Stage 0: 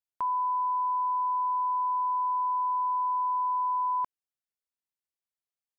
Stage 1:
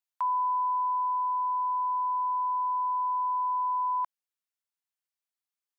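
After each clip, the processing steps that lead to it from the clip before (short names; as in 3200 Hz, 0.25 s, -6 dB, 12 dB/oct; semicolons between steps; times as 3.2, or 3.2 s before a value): HPF 740 Hz 24 dB/oct; vocal rider 2 s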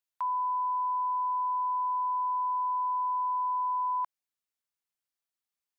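limiter -26.5 dBFS, peak gain reduction 3 dB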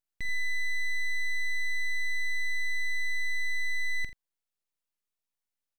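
full-wave rectifier; tapped delay 46/83 ms -13/-14 dB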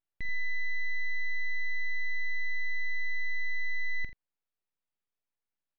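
air absorption 270 m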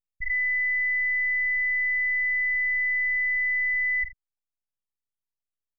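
formant sharpening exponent 3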